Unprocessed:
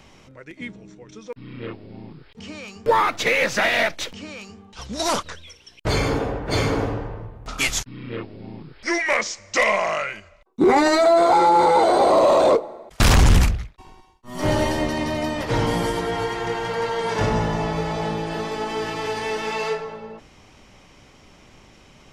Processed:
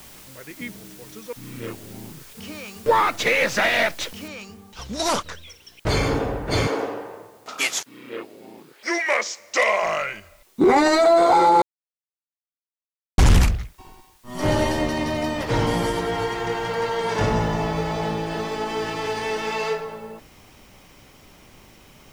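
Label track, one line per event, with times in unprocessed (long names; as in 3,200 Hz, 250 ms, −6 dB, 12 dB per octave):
4.280000	4.280000	noise floor change −46 dB −59 dB
6.670000	9.830000	Chebyshev high-pass filter 400 Hz
11.620000	13.180000	silence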